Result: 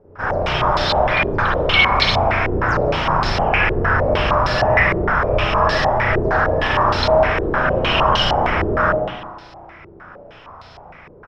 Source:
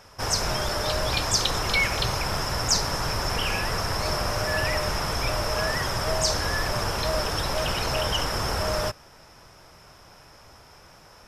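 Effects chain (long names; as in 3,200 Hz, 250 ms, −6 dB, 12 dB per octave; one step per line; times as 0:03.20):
echo with shifted repeats 147 ms, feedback 37%, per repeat +110 Hz, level −12.5 dB
spring reverb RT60 1 s, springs 33/45 ms, chirp 40 ms, DRR −6 dB
low-pass on a step sequencer 6.5 Hz 400–4,200 Hz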